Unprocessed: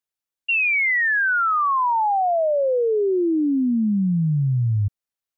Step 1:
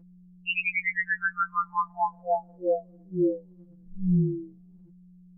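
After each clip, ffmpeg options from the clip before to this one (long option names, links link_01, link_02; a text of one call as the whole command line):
ffmpeg -i in.wav -af "aeval=exprs='val(0)+0.0126*(sin(2*PI*60*n/s)+sin(2*PI*2*60*n/s)/2+sin(2*PI*3*60*n/s)/3+sin(2*PI*4*60*n/s)/4+sin(2*PI*5*60*n/s)/5)':channel_layout=same,tremolo=f=190:d=0.75,afftfilt=real='re*2.83*eq(mod(b,8),0)':imag='im*2.83*eq(mod(b,8),0)':win_size=2048:overlap=0.75,volume=-3.5dB" out.wav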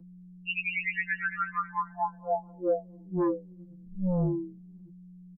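ffmpeg -i in.wav -filter_complex "[0:a]acrossover=split=180|310|1500[link_01][link_02][link_03][link_04];[link_02]aeval=exprs='0.0631*sin(PI/2*2.51*val(0)/0.0631)':channel_layout=same[link_05];[link_04]aecho=1:1:221|442|663|884:0.501|0.18|0.065|0.0234[link_06];[link_01][link_05][link_03][link_06]amix=inputs=4:normalize=0,volume=-4dB" out.wav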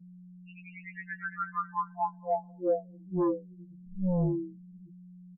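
ffmpeg -i in.wav -af "afftdn=noise_reduction=19:noise_floor=-43,lowpass=frequency=1400:width=0.5412,lowpass=frequency=1400:width=1.3066,acontrast=83,volume=-7.5dB" out.wav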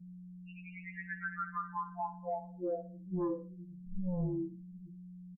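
ffmpeg -i in.wav -af "lowshelf=frequency=130:gain=8.5,alimiter=level_in=2.5dB:limit=-24dB:level=0:latency=1:release=110,volume=-2.5dB,aecho=1:1:60|120|180:0.224|0.0784|0.0274,volume=-2.5dB" out.wav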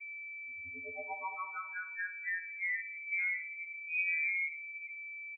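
ffmpeg -i in.wav -af "equalizer=frequency=1100:width_type=o:width=1.2:gain=-10,alimiter=level_in=10dB:limit=-24dB:level=0:latency=1:release=20,volume=-10dB,lowpass=frequency=2100:width_type=q:width=0.5098,lowpass=frequency=2100:width_type=q:width=0.6013,lowpass=frequency=2100:width_type=q:width=0.9,lowpass=frequency=2100:width_type=q:width=2.563,afreqshift=-2500,volume=5dB" out.wav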